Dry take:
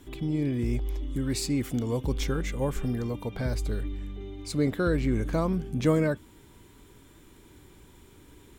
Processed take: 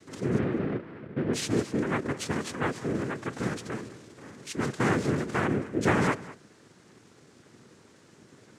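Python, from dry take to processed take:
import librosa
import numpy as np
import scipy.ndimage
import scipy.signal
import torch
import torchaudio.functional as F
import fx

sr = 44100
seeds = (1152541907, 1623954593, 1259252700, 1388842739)

y = fx.ellip_lowpass(x, sr, hz=670.0, order=4, stop_db=40, at=(0.38, 1.33))
y = fx.low_shelf(y, sr, hz=370.0, db=-8.0, at=(3.84, 4.8))
y = fx.noise_vocoder(y, sr, seeds[0], bands=3)
y = y + 10.0 ** (-18.0 / 20.0) * np.pad(y, (int(201 * sr / 1000.0), 0))[:len(y)]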